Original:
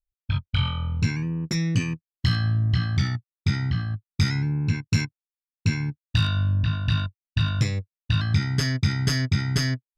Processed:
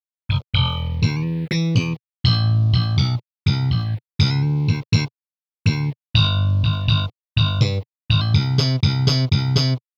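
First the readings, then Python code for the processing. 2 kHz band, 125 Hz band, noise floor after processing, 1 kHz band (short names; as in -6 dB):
+1.0 dB, +5.5 dB, under -85 dBFS, +6.0 dB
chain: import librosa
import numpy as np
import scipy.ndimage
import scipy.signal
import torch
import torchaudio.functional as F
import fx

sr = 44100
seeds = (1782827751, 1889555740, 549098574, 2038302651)

y = np.where(np.abs(x) >= 10.0 ** (-44.0 / 20.0), x, 0.0)
y = fx.env_phaser(y, sr, low_hz=460.0, high_hz=1800.0, full_db=-21.5)
y = fx.graphic_eq_10(y, sr, hz=(125, 500, 1000, 2000, 4000), db=(6, 10, 9, 10, 8))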